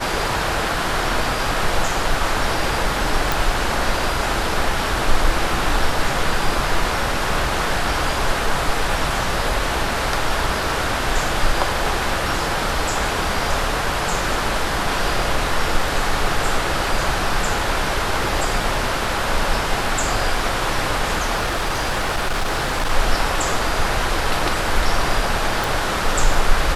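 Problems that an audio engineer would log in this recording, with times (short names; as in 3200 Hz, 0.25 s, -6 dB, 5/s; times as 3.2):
3.32 pop
21.36–22.91 clipped -16.5 dBFS
25.64 pop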